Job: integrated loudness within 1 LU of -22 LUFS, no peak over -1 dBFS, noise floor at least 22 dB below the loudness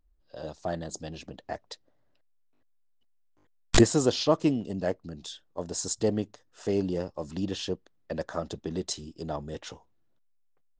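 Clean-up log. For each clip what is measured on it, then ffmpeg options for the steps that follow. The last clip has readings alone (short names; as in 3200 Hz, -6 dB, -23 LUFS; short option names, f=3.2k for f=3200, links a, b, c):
loudness -30.0 LUFS; peak -6.0 dBFS; loudness target -22.0 LUFS
-> -af "volume=8dB,alimiter=limit=-1dB:level=0:latency=1"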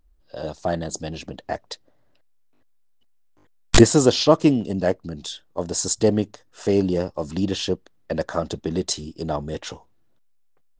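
loudness -22.5 LUFS; peak -1.0 dBFS; noise floor -59 dBFS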